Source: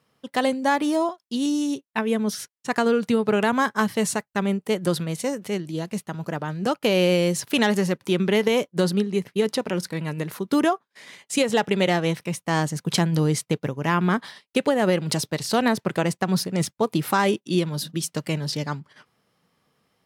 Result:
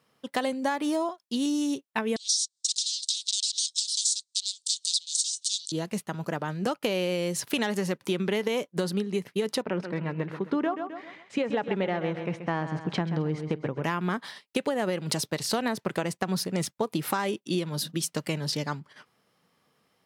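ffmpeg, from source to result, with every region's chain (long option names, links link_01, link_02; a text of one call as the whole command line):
ffmpeg -i in.wav -filter_complex "[0:a]asettb=1/sr,asplit=3[link_01][link_02][link_03];[link_01]atrim=end=2.164[link_04];[link_02]atrim=start=2.16:end=5.72,asetpts=PTS-STARTPTS,afade=type=in:duration=0.004:curve=qsin,afade=type=out:start_time=3.556:duration=0.004:curve=qsin,aeval=exprs='0.398*sin(PI/2*7.08*val(0)/0.398)':channel_layout=same,asuperpass=centerf=5800:order=12:qfactor=1.1[link_05];[link_03]atrim=start=5.716[link_06];[link_04][link_05]acrossfade=duration=0.004:curve1=hsin:curve2=qsin[link_07];[link_07][link_06]acrossfade=duration=0.004:curve1=qsin:curve2=hsin,asettb=1/sr,asplit=3[link_08][link_09][link_10];[link_08]atrim=end=9.624[link_11];[link_09]atrim=start=9.62:end=13.84,asetpts=PTS-STARTPTS,afade=type=in:duration=0.004:curve=qsin,afade=type=out:start_time=4.216:duration=0.004:curve=qsin,lowpass=2100,aecho=1:1:131|262|393|524:0.282|0.107|0.0407|0.0155,atrim=end_sample=186102[link_12];[link_10]atrim=start=13.836[link_13];[link_11][link_12]acrossfade=duration=0.004:curve1=hsin:curve2=qsin[link_14];[link_14][link_13]acrossfade=duration=0.004:curve1=qsin:curve2=hsin,lowshelf=frequency=120:gain=-8,acompressor=threshold=-24dB:ratio=6" out.wav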